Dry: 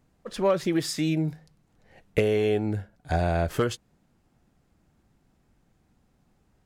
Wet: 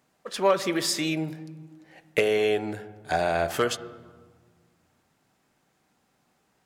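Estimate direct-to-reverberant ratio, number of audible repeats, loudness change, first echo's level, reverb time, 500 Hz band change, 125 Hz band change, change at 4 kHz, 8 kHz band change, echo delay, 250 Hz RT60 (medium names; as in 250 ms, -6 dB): 11.5 dB, no echo, +0.5 dB, no echo, 1.5 s, +1.0 dB, -8.5 dB, +5.5 dB, +5.5 dB, no echo, 2.1 s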